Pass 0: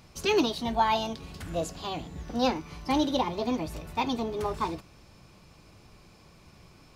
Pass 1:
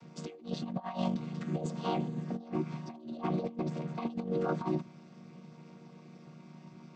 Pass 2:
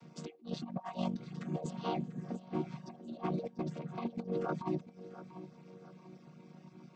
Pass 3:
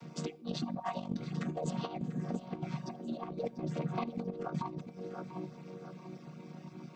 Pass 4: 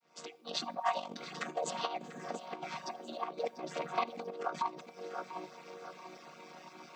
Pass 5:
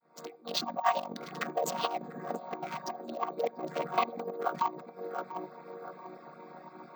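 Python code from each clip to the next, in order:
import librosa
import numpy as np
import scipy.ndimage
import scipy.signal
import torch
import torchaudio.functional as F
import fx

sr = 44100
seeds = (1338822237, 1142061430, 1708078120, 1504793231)

y1 = fx.chord_vocoder(x, sr, chord='minor triad', root=51)
y1 = fx.over_compress(y1, sr, threshold_db=-34.0, ratio=-0.5)
y2 = fx.dereverb_blind(y1, sr, rt60_s=0.72)
y2 = fx.echo_feedback(y2, sr, ms=692, feedback_pct=40, wet_db=-15.0)
y2 = y2 * librosa.db_to_amplitude(-2.5)
y3 = fx.over_compress(y2, sr, threshold_db=-39.0, ratio=-0.5)
y3 = fx.room_shoebox(y3, sr, seeds[0], volume_m3=2900.0, walls='furnished', distance_m=0.33)
y3 = y3 * librosa.db_to_amplitude(4.0)
y4 = fx.fade_in_head(y3, sr, length_s=0.61)
y4 = scipy.signal.sosfilt(scipy.signal.butter(2, 680.0, 'highpass', fs=sr, output='sos'), y4)
y4 = y4 * librosa.db_to_amplitude(7.5)
y5 = fx.wiener(y4, sr, points=15)
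y5 = np.repeat(y5[::2], 2)[:len(y5)]
y5 = y5 * librosa.db_to_amplitude(5.0)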